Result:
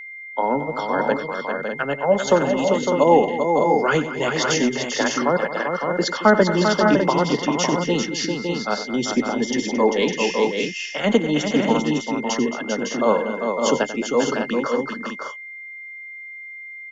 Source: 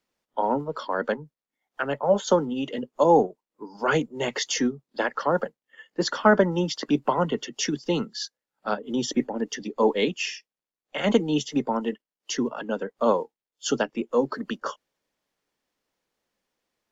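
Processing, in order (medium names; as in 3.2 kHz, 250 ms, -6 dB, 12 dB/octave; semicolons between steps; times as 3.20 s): multi-tap echo 93/221/395/556/602 ms -12.5/-13.5/-6/-6/-7 dB; whistle 2.1 kHz -37 dBFS; trim +3 dB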